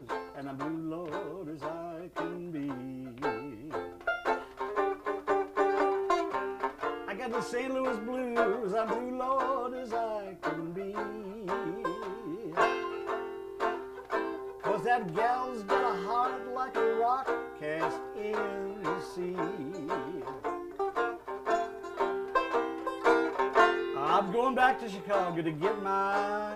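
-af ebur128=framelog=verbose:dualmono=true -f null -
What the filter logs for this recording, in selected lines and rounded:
Integrated loudness:
  I:         -29.1 LUFS
  Threshold: -39.1 LUFS
Loudness range:
  LRA:         7.2 LU
  Threshold: -49.1 LUFS
  LRA low:   -32.4 LUFS
  LRA high:  -25.2 LUFS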